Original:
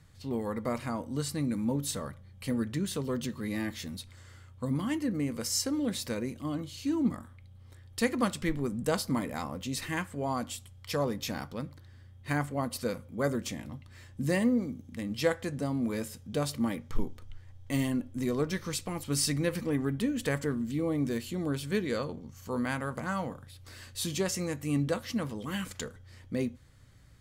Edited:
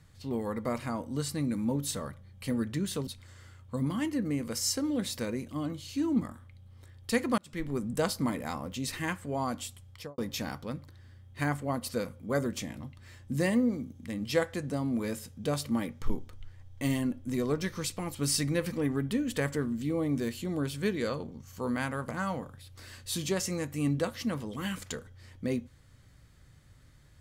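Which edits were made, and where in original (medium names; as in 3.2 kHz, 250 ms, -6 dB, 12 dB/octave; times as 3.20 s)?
3.07–3.96 s: delete
8.27–8.66 s: fade in
10.78–11.07 s: studio fade out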